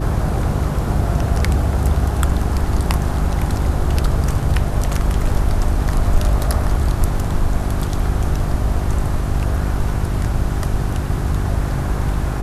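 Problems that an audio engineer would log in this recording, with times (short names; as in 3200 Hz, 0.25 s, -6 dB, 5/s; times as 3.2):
hum 50 Hz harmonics 8 -22 dBFS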